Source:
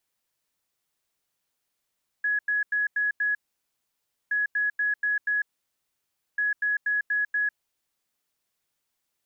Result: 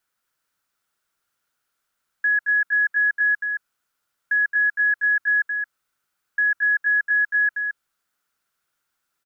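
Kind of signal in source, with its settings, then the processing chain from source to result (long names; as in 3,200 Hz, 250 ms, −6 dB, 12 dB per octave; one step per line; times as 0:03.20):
beeps in groups sine 1,680 Hz, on 0.15 s, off 0.09 s, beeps 5, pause 0.96 s, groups 3, −22 dBFS
parametric band 1,400 Hz +13.5 dB 0.47 octaves
on a send: single-tap delay 221 ms −6 dB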